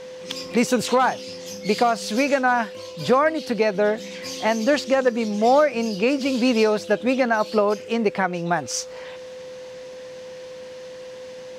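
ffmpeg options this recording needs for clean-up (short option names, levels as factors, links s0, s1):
-af "bandreject=f=510:w=30"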